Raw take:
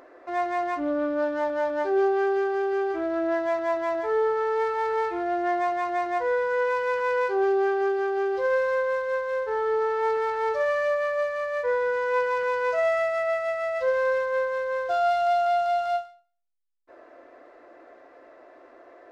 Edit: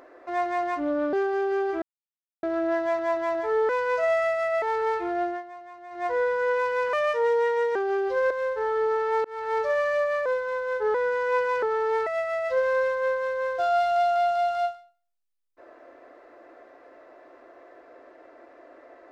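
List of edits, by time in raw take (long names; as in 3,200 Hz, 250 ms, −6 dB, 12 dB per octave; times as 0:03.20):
0:01.13–0:02.34: remove
0:03.03: splice in silence 0.61 s
0:04.29–0:04.73: swap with 0:12.44–0:13.37
0:05.34–0:06.21: duck −17 dB, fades 0.20 s
0:07.04–0:08.03: play speed 120%
0:08.58–0:09.21: remove
0:10.15–0:10.44: fade in
0:11.16–0:11.76: play speed 87%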